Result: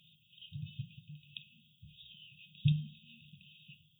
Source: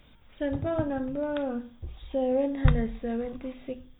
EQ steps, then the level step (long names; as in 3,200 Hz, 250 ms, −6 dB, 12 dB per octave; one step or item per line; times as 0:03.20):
high-pass filter 150 Hz 24 dB per octave
linear-phase brick-wall band-stop 190–2,500 Hz
+1.0 dB